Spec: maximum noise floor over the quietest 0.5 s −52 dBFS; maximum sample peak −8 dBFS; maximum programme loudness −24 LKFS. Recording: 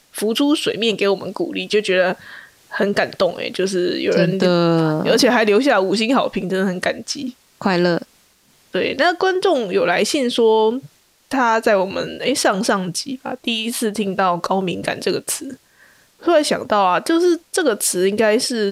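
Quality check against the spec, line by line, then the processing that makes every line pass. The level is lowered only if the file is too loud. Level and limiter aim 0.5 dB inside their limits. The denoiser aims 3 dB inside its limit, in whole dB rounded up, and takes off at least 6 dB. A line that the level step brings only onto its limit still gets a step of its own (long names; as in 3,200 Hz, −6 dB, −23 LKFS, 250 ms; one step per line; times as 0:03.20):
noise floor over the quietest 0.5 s −56 dBFS: in spec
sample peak −4.5 dBFS: out of spec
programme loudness −18.0 LKFS: out of spec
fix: level −6.5 dB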